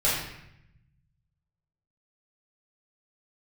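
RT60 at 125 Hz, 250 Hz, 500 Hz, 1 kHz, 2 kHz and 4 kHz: 2.0, 1.4, 0.80, 0.80, 0.85, 0.70 seconds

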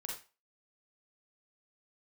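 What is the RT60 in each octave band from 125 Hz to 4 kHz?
0.25, 0.25, 0.30, 0.35, 0.30, 0.30 seconds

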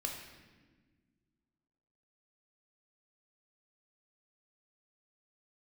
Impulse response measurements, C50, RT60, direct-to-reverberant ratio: 4.0 dB, 1.4 s, 0.5 dB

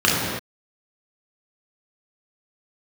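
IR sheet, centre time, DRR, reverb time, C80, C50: 97 ms, −6.0 dB, non-exponential decay, 1.0 dB, −1.0 dB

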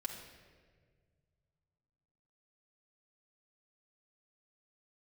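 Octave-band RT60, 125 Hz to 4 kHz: 3.3, 2.2, 2.0, 1.4, 1.5, 1.1 seconds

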